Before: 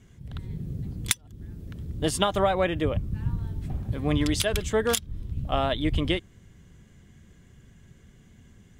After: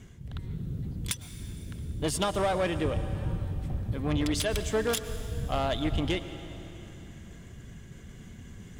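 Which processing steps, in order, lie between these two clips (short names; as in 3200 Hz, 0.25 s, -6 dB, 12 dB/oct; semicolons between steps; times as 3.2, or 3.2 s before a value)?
reverse; upward compressor, threshold -35 dBFS; reverse; soft clip -20.5 dBFS, distortion -13 dB; reverb RT60 3.3 s, pre-delay 97 ms, DRR 11 dB; gain -1 dB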